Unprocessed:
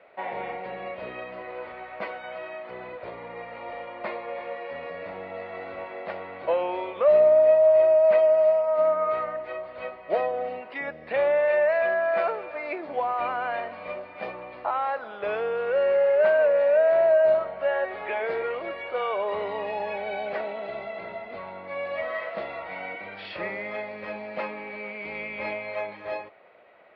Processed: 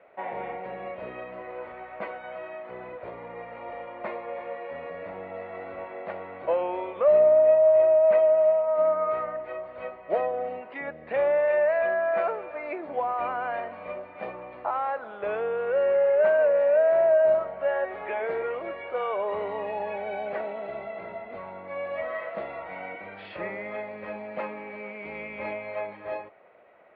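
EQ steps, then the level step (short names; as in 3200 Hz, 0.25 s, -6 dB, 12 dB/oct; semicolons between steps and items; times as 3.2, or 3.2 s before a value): LPF 2700 Hz 6 dB/oct; air absorption 180 m; 0.0 dB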